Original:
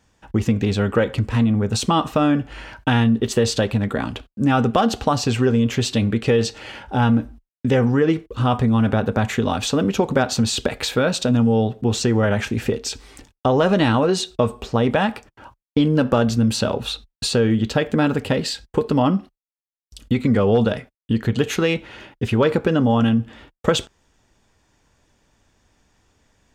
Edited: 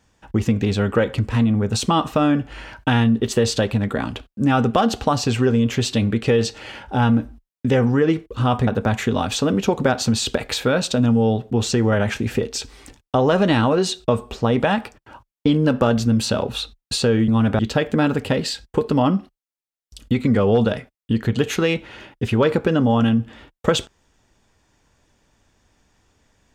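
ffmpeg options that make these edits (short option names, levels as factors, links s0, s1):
-filter_complex "[0:a]asplit=4[s0][s1][s2][s3];[s0]atrim=end=8.672[s4];[s1]atrim=start=8.978:end=17.592[s5];[s2]atrim=start=8.668:end=8.982[s6];[s3]atrim=start=17.588[s7];[s4][s5]acrossfade=d=0.004:c1=hsin:c2=hsin[s8];[s8][s6]acrossfade=d=0.004:c1=hsin:c2=hsin[s9];[s9][s7]acrossfade=d=0.004:c1=hsin:c2=hsin"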